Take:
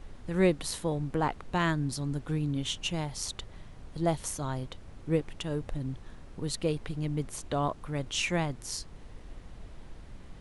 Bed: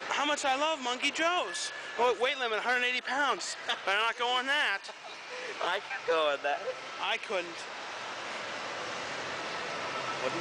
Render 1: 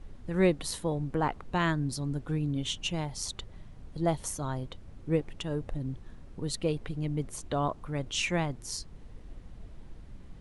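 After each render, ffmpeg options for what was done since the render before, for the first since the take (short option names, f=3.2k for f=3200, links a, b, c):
-af "afftdn=nr=6:nf=-49"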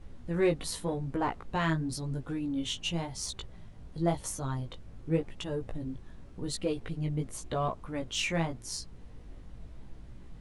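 -filter_complex "[0:a]flanger=delay=15.5:depth=3.5:speed=0.91,asplit=2[a][b];[b]asoftclip=type=tanh:threshold=-32dB,volume=-9dB[c];[a][c]amix=inputs=2:normalize=0"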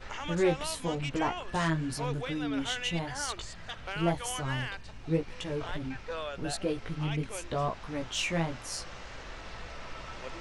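-filter_complex "[1:a]volume=-9.5dB[a];[0:a][a]amix=inputs=2:normalize=0"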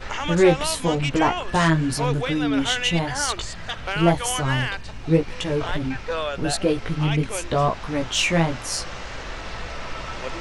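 -af "volume=10.5dB"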